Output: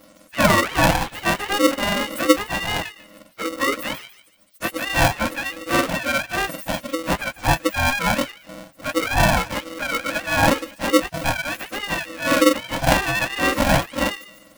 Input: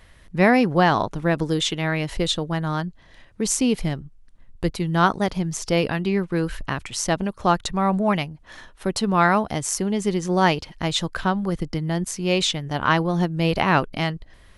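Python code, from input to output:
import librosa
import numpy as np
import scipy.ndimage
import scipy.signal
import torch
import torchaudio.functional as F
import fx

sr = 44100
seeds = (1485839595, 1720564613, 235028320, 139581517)

y = fx.octave_mirror(x, sr, pivot_hz=620.0)
y = fx.echo_wet_highpass(y, sr, ms=146, feedback_pct=32, hz=3700.0, wet_db=-6.0)
y = y * np.sign(np.sin(2.0 * np.pi * 410.0 * np.arange(len(y)) / sr))
y = F.gain(torch.from_numpy(y), 1.5).numpy()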